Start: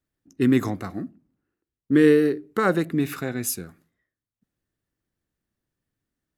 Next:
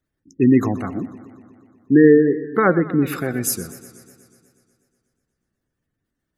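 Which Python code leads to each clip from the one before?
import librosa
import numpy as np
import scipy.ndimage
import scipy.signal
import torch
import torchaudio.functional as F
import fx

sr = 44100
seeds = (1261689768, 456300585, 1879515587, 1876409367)

y = fx.spec_gate(x, sr, threshold_db=-25, keep='strong')
y = fx.echo_warbled(y, sr, ms=122, feedback_pct=70, rate_hz=2.8, cents=98, wet_db=-16.5)
y = F.gain(torch.from_numpy(y), 5.0).numpy()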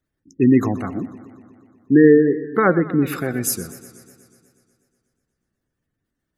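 y = x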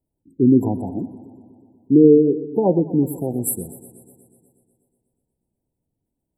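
y = fx.brickwall_bandstop(x, sr, low_hz=1000.0, high_hz=7500.0)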